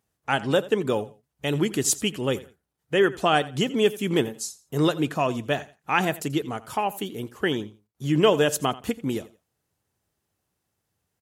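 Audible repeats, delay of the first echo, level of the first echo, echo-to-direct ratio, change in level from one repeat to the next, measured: 2, 85 ms, -18.5 dB, -18.0 dB, -12.5 dB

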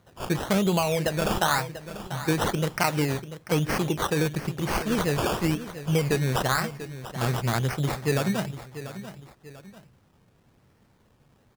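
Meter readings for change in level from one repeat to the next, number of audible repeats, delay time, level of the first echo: -8.0 dB, 2, 0.691 s, -13.0 dB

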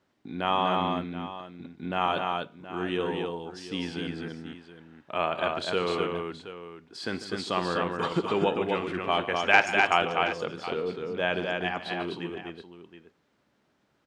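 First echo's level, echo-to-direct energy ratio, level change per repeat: -17.5 dB, -2.5 dB, no steady repeat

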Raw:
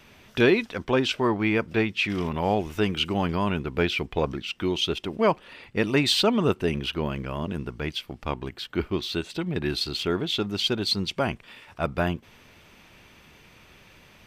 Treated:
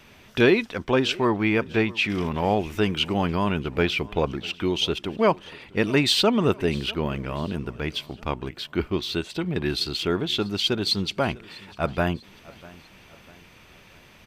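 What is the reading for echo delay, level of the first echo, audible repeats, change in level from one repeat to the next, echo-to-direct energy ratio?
0.646 s, -22.0 dB, 2, -7.0 dB, -21.0 dB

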